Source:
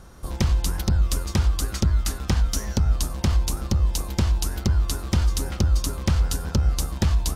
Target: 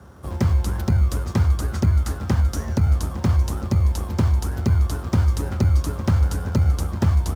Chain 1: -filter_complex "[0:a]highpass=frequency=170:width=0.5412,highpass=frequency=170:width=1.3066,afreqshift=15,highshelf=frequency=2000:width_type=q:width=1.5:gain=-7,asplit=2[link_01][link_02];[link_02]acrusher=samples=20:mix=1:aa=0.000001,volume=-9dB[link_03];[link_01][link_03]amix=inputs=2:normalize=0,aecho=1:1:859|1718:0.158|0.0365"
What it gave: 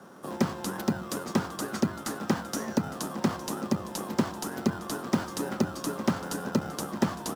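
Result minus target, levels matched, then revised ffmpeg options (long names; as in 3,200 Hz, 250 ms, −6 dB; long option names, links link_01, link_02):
125 Hz band −8.5 dB
-filter_complex "[0:a]highpass=frequency=43:width=0.5412,highpass=frequency=43:width=1.3066,afreqshift=15,highshelf=frequency=2000:width_type=q:width=1.5:gain=-7,asplit=2[link_01][link_02];[link_02]acrusher=samples=20:mix=1:aa=0.000001,volume=-9dB[link_03];[link_01][link_03]amix=inputs=2:normalize=0,aecho=1:1:859|1718:0.158|0.0365"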